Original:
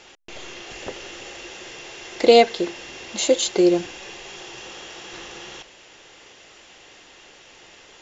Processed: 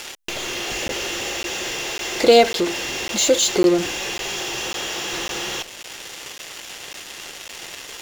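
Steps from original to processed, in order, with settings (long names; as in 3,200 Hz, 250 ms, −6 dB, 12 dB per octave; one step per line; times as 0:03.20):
high-shelf EQ 5,100 Hz +5.5 dB
in parallel at −11.5 dB: fuzz pedal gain 40 dB, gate −45 dBFS
on the sum: regular buffer underruns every 0.55 s, samples 512, zero, from 0:00.88
one half of a high-frequency compander encoder only
level −1 dB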